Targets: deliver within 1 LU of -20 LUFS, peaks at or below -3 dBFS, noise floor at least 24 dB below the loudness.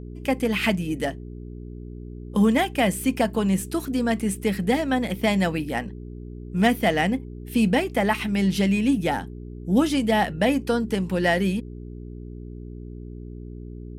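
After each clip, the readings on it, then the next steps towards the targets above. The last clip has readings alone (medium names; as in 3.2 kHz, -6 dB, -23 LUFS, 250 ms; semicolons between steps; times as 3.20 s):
hum 60 Hz; highest harmonic 420 Hz; hum level -34 dBFS; loudness -23.5 LUFS; peak level -7.5 dBFS; loudness target -20.0 LUFS
-> de-hum 60 Hz, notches 7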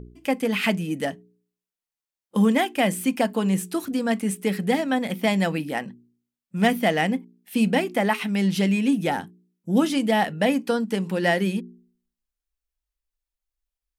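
hum not found; loudness -23.5 LUFS; peak level -7.5 dBFS; loudness target -20.0 LUFS
-> trim +3.5 dB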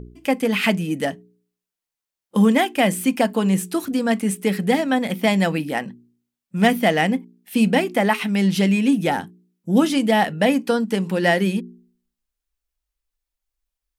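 loudness -20.0 LUFS; peak level -4.0 dBFS; noise floor -87 dBFS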